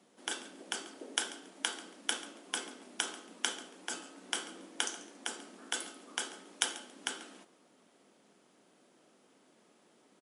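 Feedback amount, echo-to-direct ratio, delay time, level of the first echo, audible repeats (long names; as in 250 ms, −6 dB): 21%, −17.5 dB, 139 ms, −17.5 dB, 2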